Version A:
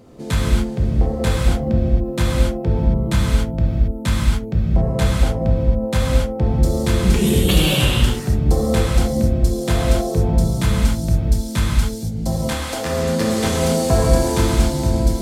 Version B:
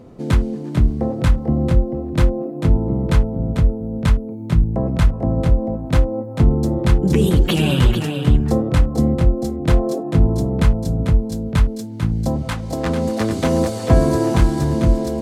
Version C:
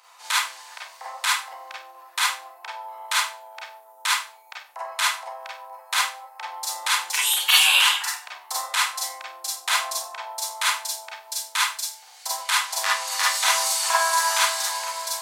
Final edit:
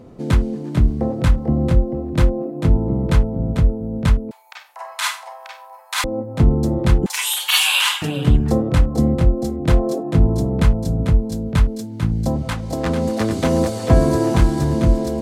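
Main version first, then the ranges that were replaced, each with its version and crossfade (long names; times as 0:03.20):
B
0:04.31–0:06.04: punch in from C
0:07.06–0:08.02: punch in from C
not used: A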